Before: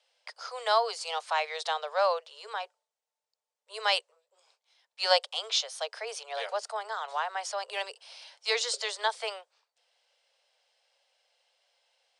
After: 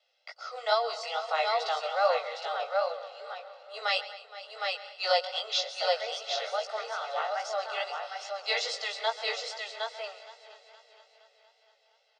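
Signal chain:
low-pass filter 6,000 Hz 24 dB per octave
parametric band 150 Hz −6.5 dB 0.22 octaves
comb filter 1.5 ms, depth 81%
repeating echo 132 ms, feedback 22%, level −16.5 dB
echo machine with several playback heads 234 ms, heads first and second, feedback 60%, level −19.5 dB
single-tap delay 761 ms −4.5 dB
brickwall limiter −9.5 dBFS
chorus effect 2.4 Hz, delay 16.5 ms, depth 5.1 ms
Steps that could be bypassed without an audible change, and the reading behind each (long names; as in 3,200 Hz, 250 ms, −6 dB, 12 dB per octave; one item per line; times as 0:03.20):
parametric band 150 Hz: nothing at its input below 360 Hz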